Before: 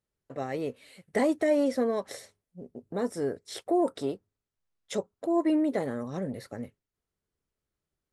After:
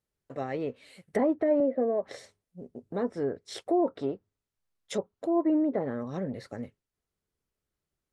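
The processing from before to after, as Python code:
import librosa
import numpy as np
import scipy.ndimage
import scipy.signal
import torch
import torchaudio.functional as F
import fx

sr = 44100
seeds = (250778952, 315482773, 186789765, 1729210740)

y = fx.cabinet(x, sr, low_hz=230.0, low_slope=12, high_hz=2700.0, hz=(630.0, 980.0, 1400.0, 2400.0), db=(6, -9, -8, -4), at=(1.6, 2.03))
y = fx.env_lowpass_down(y, sr, base_hz=1200.0, full_db=-24.0)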